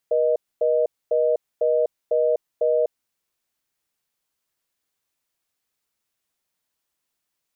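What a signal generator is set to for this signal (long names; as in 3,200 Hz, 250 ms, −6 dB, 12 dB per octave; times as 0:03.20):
call progress tone reorder tone, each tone −19.5 dBFS 2.86 s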